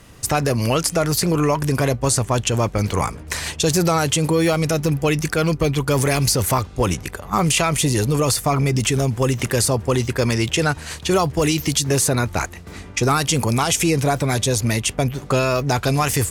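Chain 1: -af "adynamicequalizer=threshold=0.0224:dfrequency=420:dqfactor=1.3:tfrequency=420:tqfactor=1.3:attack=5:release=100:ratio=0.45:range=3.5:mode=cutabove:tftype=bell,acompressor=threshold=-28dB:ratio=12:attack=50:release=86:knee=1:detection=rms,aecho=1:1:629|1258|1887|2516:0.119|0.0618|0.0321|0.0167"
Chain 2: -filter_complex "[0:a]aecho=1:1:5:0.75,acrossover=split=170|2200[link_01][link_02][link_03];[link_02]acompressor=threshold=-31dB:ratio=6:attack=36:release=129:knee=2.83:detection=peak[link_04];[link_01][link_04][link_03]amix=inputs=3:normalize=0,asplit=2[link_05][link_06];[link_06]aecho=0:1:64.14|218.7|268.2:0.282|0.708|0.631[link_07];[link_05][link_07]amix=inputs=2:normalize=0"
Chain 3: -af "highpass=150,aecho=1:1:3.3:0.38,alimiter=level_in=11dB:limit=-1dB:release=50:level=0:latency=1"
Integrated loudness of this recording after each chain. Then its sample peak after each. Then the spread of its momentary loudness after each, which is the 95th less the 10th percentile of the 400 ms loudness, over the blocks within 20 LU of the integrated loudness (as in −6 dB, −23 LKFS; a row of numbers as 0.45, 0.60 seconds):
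−28.5, −18.5, −12.0 LKFS; −9.5, −2.5, −1.0 dBFS; 3, 6, 5 LU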